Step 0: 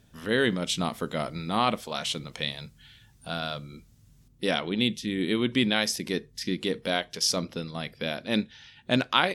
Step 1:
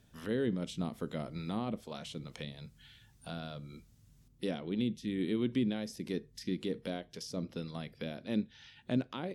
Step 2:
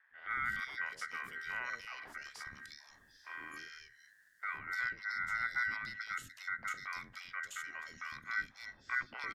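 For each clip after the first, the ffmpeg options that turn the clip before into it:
-filter_complex "[0:a]acrossover=split=500[a][b];[b]acompressor=threshold=-40dB:ratio=6[c];[a][c]amix=inputs=2:normalize=0,volume=-5dB"
-filter_complex "[0:a]aeval=exprs='val(0)*sin(2*PI*2000*n/s)':c=same,afreqshift=-270,acrossover=split=530|2600[a][b][c];[a]adelay=110[d];[c]adelay=300[e];[d][b][e]amix=inputs=3:normalize=0"

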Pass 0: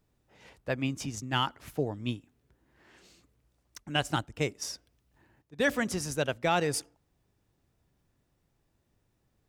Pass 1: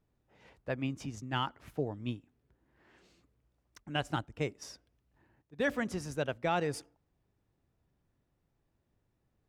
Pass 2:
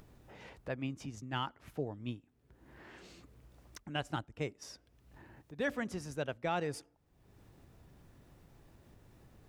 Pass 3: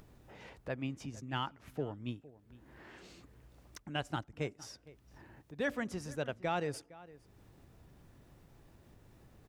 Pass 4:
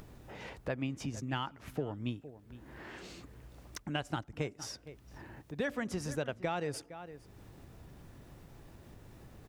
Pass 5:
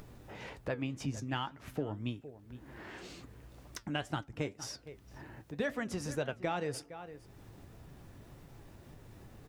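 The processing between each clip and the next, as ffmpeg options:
-af "highshelf=f=3.9k:g=-10.5,volume=-3.5dB"
-af "acompressor=mode=upward:threshold=-38dB:ratio=2.5,volume=-3.5dB"
-filter_complex "[0:a]asplit=2[a][b];[b]adelay=460.6,volume=-19dB,highshelf=f=4k:g=-10.4[c];[a][c]amix=inputs=2:normalize=0"
-af "acompressor=threshold=-38dB:ratio=5,volume=6.5dB"
-af "flanger=delay=6.5:depth=4.3:regen=70:speed=1.9:shape=triangular,volume=4.5dB"

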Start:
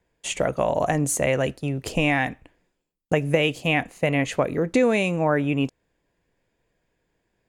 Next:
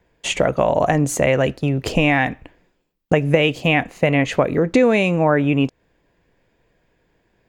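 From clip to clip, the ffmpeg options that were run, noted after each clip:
-filter_complex "[0:a]equalizer=f=10k:w=0.85:g=-11,asplit=2[a][b];[b]acompressor=threshold=-28dB:ratio=6,volume=3dB[c];[a][c]amix=inputs=2:normalize=0,volume=2dB"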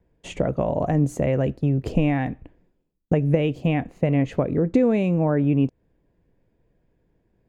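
-af "tiltshelf=f=660:g=8.5,volume=-8dB"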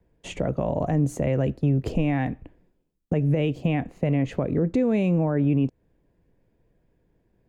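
-filter_complex "[0:a]alimiter=limit=-13dB:level=0:latency=1:release=38,acrossover=split=270|3000[a][b][c];[b]acompressor=threshold=-25dB:ratio=2[d];[a][d][c]amix=inputs=3:normalize=0"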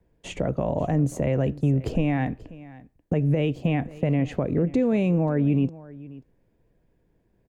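-af "aecho=1:1:536:0.106"

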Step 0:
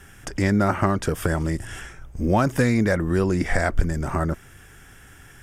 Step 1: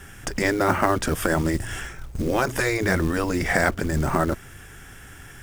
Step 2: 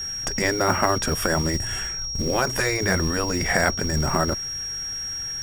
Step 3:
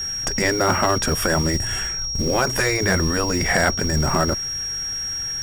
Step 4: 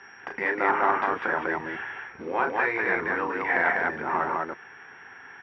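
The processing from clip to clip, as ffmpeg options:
-af "afftfilt=real='re*lt(hypot(re,im),0.501)':imag='im*lt(hypot(re,im),0.501)':win_size=1024:overlap=0.75,acrusher=bits=5:mode=log:mix=0:aa=0.000001,volume=4dB"
-af "equalizer=f=310:w=3.4:g=-4.5,aeval=exprs='val(0)+0.0398*sin(2*PI*5600*n/s)':c=same"
-af "asoftclip=type=tanh:threshold=-11.5dB,volume=3.5dB"
-filter_complex "[0:a]highpass=490,equalizer=f=600:t=q:w=4:g=-10,equalizer=f=920:t=q:w=4:g=5,equalizer=f=1.3k:t=q:w=4:g=-4,lowpass=f=2.2k:w=0.5412,lowpass=f=2.2k:w=1.3066,asplit=2[a][b];[b]aecho=0:1:34.99|198.3:0.501|0.794[c];[a][c]amix=inputs=2:normalize=0,volume=-2.5dB"

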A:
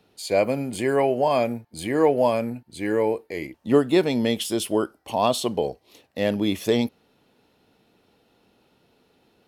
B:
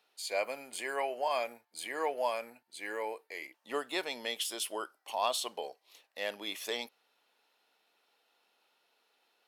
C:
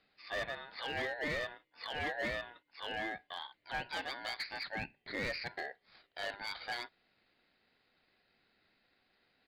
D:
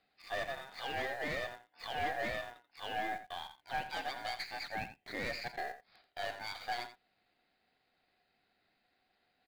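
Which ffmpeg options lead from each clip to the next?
-af "highpass=870,volume=-5.5dB"
-af "aresample=8000,asoftclip=type=tanh:threshold=-32dB,aresample=44100,aeval=exprs='val(0)*sin(2*PI*1200*n/s)':c=same,asoftclip=type=hard:threshold=-35dB,volume=3.5dB"
-filter_complex "[0:a]equalizer=f=730:w=6.3:g=9.5,asplit=2[a][b];[b]acrusher=bits=5:dc=4:mix=0:aa=0.000001,volume=-5dB[c];[a][c]amix=inputs=2:normalize=0,aecho=1:1:85:0.251,volume=-4dB"

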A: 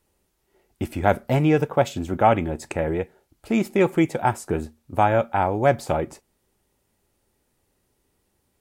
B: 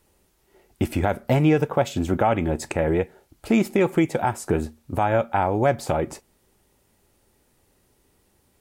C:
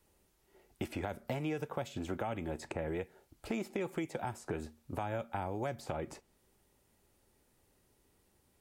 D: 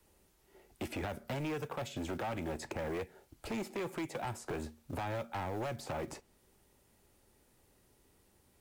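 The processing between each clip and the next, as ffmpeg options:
-filter_complex "[0:a]asplit=2[a][b];[b]acompressor=threshold=-27dB:ratio=6,volume=0.5dB[c];[a][c]amix=inputs=2:normalize=0,alimiter=limit=-9.5dB:level=0:latency=1:release=205"
-filter_complex "[0:a]acrossover=split=350|1200|3500|7100[a][b][c][d][e];[a]acompressor=threshold=-34dB:ratio=4[f];[b]acompressor=threshold=-32dB:ratio=4[g];[c]acompressor=threshold=-41dB:ratio=4[h];[d]acompressor=threshold=-49dB:ratio=4[i];[e]acompressor=threshold=-55dB:ratio=4[j];[f][g][h][i][j]amix=inputs=5:normalize=0,volume=-7.5dB"
-filter_complex "[0:a]acrossover=split=130|940[a][b][c];[b]acrusher=bits=5:mode=log:mix=0:aa=0.000001[d];[a][d][c]amix=inputs=3:normalize=0,asoftclip=type=hard:threshold=-37dB,volume=3dB"

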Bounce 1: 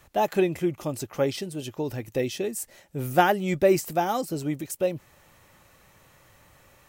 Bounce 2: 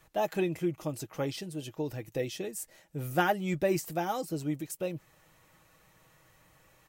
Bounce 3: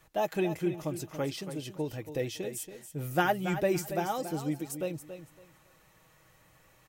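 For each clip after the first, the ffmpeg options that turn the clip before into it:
-af "aecho=1:1:6.3:0.44,volume=-6.5dB"
-af "aecho=1:1:280|560|840:0.299|0.0657|0.0144"

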